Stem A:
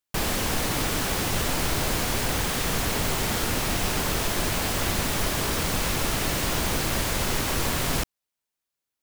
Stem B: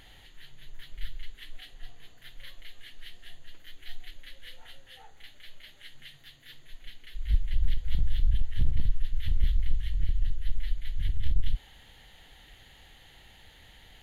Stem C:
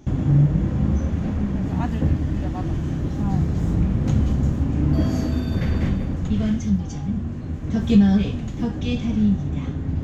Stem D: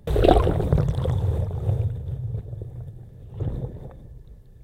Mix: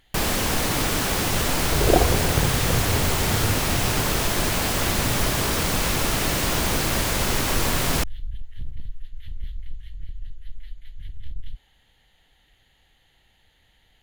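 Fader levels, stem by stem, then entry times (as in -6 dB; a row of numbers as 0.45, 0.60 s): +3.0 dB, -8.0 dB, off, -2.5 dB; 0.00 s, 0.00 s, off, 1.65 s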